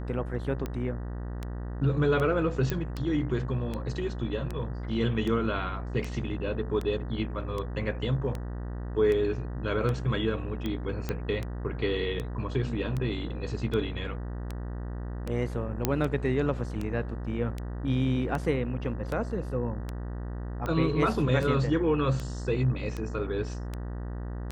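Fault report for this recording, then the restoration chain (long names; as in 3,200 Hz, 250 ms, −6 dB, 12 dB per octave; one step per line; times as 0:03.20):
mains buzz 60 Hz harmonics 32 −35 dBFS
scratch tick 78 rpm −20 dBFS
0:02.70: click −15 dBFS
0:11.09: click −17 dBFS
0:15.85: click −9 dBFS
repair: click removal
hum removal 60 Hz, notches 32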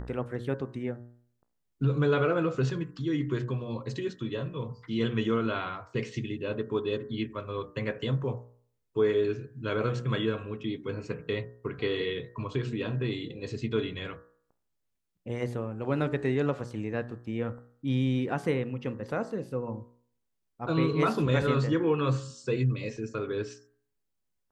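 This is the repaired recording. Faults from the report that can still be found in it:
none of them is left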